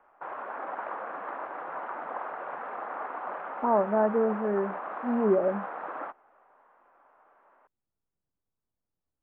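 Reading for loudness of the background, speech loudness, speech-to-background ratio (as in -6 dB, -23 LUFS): -37.0 LUFS, -27.0 LUFS, 10.0 dB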